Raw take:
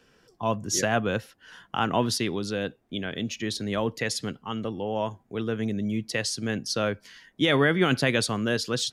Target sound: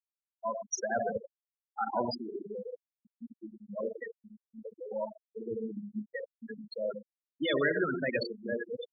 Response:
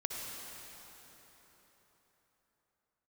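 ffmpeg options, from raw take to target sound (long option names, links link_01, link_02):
-filter_complex "[0:a]asettb=1/sr,asplit=3[link_01][link_02][link_03];[link_01]atrim=end=2.394[link_04];[link_02]atrim=start=2.39:end=3.33,asetpts=PTS-STARTPTS,afade=type=in:duration=0.004:curve=qsin,afade=type=out:start_time=0.936:duration=0.004:curve=qsin,highpass=frequency=110:poles=1[link_05];[link_03]atrim=start=3.326[link_06];[link_04][link_05]acrossfade=duration=0.004:curve1=hsin:curve2=qsin[link_07];[link_07][link_06]acrossfade=duration=0.004:curve1=qsin:curve2=hsin,asettb=1/sr,asplit=3[link_08][link_09][link_10];[link_08]atrim=end=5.054[link_11];[link_09]atrim=start=5.05:end=5.79,asetpts=PTS-STARTPTS,afade=type=in:duration=0.004:curve=qsin,afade=type=out:start_time=0.736:duration=0.004:curve=qsin,equalizer=frequency=140:width=2.9:gain=10[link_12];[link_10]atrim=start=5.786[link_13];[link_11][link_12]acrossfade=duration=0.004:curve1=hsin:curve2=qsin[link_14];[link_14][link_13]acrossfade=duration=0.004:curve1=qsin:curve2=hsin[link_15];[1:a]atrim=start_sample=2205,afade=type=out:start_time=0.27:duration=0.01,atrim=end_sample=12348,asetrate=61740,aresample=44100[link_16];[link_15][link_16]afir=irnorm=-1:irlink=0,afftfilt=real='re*gte(hypot(re,im),0.141)':imag='im*gte(hypot(re,im),0.141)':win_size=1024:overlap=0.75,bass=frequency=250:gain=-13,treble=frequency=4000:gain=10,afftfilt=real='re*gte(hypot(re,im),0.0447)':imag='im*gte(hypot(re,im),0.0447)':win_size=1024:overlap=0.75"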